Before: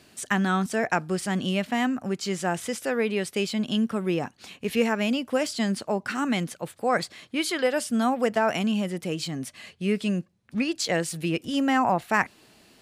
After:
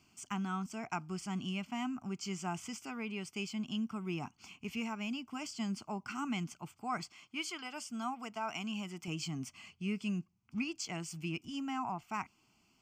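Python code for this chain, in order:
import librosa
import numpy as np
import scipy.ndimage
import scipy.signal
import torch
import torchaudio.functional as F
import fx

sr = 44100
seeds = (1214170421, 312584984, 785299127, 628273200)

y = fx.low_shelf(x, sr, hz=270.0, db=-10.0, at=(7.08, 9.08))
y = fx.rider(y, sr, range_db=4, speed_s=0.5)
y = fx.fixed_phaser(y, sr, hz=2600.0, stages=8)
y = y * 10.0 ** (-9.0 / 20.0)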